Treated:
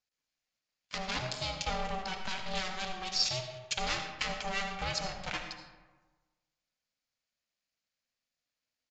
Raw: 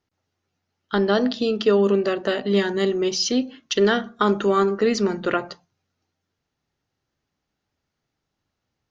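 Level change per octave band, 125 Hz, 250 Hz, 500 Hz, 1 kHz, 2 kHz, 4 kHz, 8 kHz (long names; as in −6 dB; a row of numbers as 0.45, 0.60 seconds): −11.5 dB, −23.5 dB, −23.0 dB, −10.0 dB, −8.0 dB, −5.5 dB, can't be measured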